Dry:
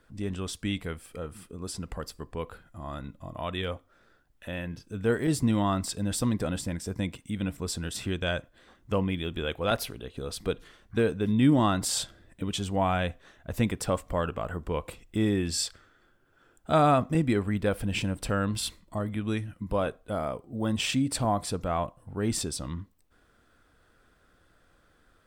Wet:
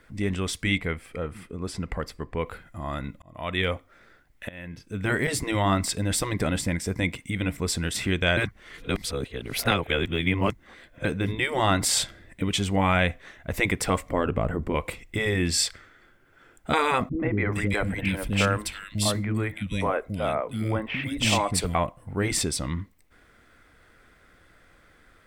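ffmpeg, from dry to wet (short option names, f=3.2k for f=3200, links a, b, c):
-filter_complex "[0:a]asettb=1/sr,asplit=3[a][b][c];[a]atrim=end=0.784[d];[b]atrim=start=0.78:end=2.46,asetpts=PTS-STARTPTS,afade=t=in:d=0.004:c=qsin,afade=t=out:st=1.676:d=0.004:c=qsin,highshelf=f=4.6k:g=-10.5[e];[c]atrim=start=2.456[f];[d][e]acrossfade=d=0.004:c1=hsin:c2=qsin[g];[g][f]acrossfade=d=0.004:c1=qsin:c2=hsin,asettb=1/sr,asplit=3[h][i][j];[h]atrim=end=14.094[k];[i]atrim=start=14.09:end=14.75,asetpts=PTS-STARTPTS,afade=t=in:d=0.004:c=qsin,afade=t=out:st=0.656:d=0.004:c=qsin,tiltshelf=f=640:g=7[l];[j]atrim=start=14.746[m];[k][l]acrossfade=d=0.004:c1=hsin:c2=qsin[n];[n][m]acrossfade=d=0.004:c1=qsin:c2=hsin,asettb=1/sr,asplit=3[o][p][q];[o]atrim=end=17.094[r];[p]atrim=start=17.09:end=21.75,asetpts=PTS-STARTPTS,afade=t=in:d=0.004:c=qsin,afade=t=out:st=4.656:d=0.004:c=qsin,acrossover=split=310|2200[s][t][u];[t]adelay=100[v];[u]adelay=430[w];[s][v][w]amix=inputs=3:normalize=0,atrim=end_sample=205506[x];[q]atrim=start=21.746[y];[r][x]acrossfade=d=0.004:c1=hsin:c2=qsin[z];[z][y]acrossfade=d=0.004:c1=qsin:c2=hsin,asplit=5[aa][ab][ac][ad][ae];[aa]atrim=end=3.22,asetpts=PTS-STARTPTS,afade=t=out:st=3.216:d=0.004:c=hsin[af];[ab]atrim=start=3.22:end=4.49,asetpts=PTS-STARTPTS,afade=t=in:d=0.4,afade=t=out:st=1.266:d=0.004:c=hsin:silence=0.0841395[ag];[ac]atrim=start=4.49:end=8.372,asetpts=PTS-STARTPTS,afade=t=in:d=0.59:silence=0.0841395[ah];[ad]atrim=start=8.368:end=11.052,asetpts=PTS-STARTPTS,areverse[ai];[ae]atrim=start=11.048[aj];[af][ag][ah]concat=n=3:v=0:a=1[ak];[ak][ai]acrossfade=d=0.004:c1=hsin:c2=hsin[al];[al][aj]acrossfade=d=0.004:c1=hsin:c2=hsin,afftfilt=real='re*lt(hypot(re,im),0.316)':imag='im*lt(hypot(re,im),0.316)':win_size=1024:overlap=0.75,equalizer=f=2.1k:w=3.7:g=11,volume=5.5dB"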